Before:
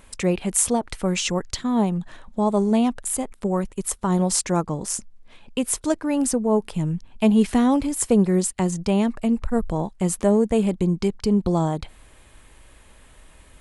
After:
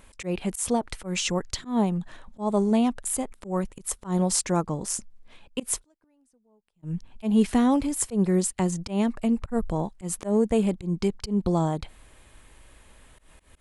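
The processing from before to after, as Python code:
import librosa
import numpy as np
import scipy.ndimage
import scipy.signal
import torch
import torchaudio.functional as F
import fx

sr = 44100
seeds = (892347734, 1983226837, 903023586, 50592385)

y = fx.gate_flip(x, sr, shuts_db=-25.0, range_db=-41, at=(5.82, 6.82), fade=0.02)
y = fx.auto_swell(y, sr, attack_ms=130.0)
y = F.gain(torch.from_numpy(y), -2.5).numpy()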